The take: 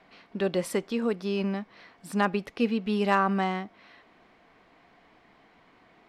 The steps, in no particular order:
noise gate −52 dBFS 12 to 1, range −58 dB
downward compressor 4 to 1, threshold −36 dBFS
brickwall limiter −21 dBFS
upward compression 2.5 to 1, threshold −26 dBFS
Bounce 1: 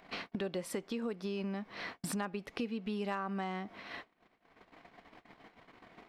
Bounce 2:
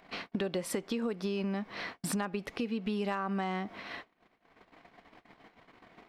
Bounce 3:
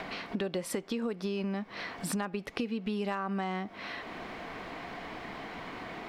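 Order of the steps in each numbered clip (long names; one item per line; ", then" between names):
noise gate, then upward compression, then downward compressor, then brickwall limiter
noise gate, then downward compressor, then upward compression, then brickwall limiter
downward compressor, then brickwall limiter, then upward compression, then noise gate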